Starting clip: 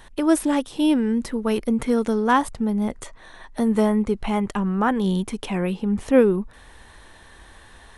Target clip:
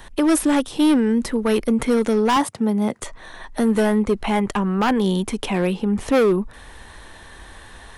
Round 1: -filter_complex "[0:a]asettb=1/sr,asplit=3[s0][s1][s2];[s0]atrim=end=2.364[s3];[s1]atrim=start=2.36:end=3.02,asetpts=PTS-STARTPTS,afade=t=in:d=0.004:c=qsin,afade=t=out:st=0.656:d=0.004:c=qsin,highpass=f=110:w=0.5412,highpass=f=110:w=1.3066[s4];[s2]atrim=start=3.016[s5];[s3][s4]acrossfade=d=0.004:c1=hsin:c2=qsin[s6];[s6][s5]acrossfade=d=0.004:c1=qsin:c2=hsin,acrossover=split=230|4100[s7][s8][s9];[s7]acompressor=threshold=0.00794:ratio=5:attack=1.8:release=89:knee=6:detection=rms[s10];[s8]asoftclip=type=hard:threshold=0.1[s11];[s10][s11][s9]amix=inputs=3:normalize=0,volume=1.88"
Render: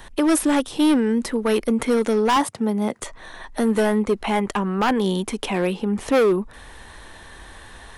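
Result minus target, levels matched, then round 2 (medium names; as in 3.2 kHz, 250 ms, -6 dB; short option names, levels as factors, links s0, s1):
compression: peak gain reduction +8.5 dB
-filter_complex "[0:a]asettb=1/sr,asplit=3[s0][s1][s2];[s0]atrim=end=2.364[s3];[s1]atrim=start=2.36:end=3.02,asetpts=PTS-STARTPTS,afade=t=in:d=0.004:c=qsin,afade=t=out:st=0.656:d=0.004:c=qsin,highpass=f=110:w=0.5412,highpass=f=110:w=1.3066[s4];[s2]atrim=start=3.016[s5];[s3][s4]acrossfade=d=0.004:c1=hsin:c2=qsin[s6];[s6][s5]acrossfade=d=0.004:c1=qsin:c2=hsin,acrossover=split=230|4100[s7][s8][s9];[s7]acompressor=threshold=0.0266:ratio=5:attack=1.8:release=89:knee=6:detection=rms[s10];[s8]asoftclip=type=hard:threshold=0.1[s11];[s10][s11][s9]amix=inputs=3:normalize=0,volume=1.88"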